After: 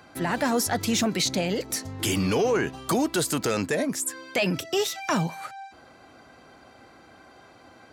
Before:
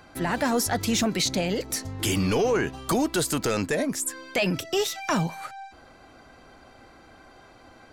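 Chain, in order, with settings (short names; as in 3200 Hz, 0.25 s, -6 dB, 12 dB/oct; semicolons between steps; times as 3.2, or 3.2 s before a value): HPF 88 Hz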